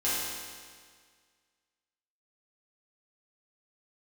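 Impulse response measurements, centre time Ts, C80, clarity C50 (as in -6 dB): 0.122 s, 0.0 dB, -2.5 dB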